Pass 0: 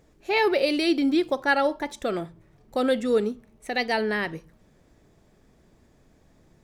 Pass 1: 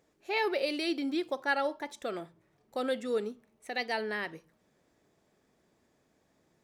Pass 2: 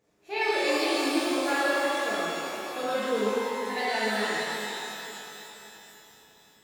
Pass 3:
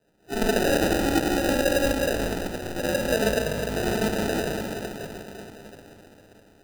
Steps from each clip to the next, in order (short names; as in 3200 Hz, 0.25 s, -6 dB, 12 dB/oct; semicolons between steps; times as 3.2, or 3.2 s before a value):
HPF 320 Hz 6 dB/oct; gain -7 dB
shimmer reverb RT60 3.4 s, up +12 st, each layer -8 dB, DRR -10.5 dB; gain -5 dB
sample-and-hold 40×; gain +3.5 dB